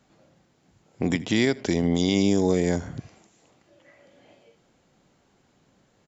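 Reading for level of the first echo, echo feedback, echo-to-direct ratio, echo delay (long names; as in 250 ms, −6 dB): −22.0 dB, repeats not evenly spaced, −22.0 dB, 81 ms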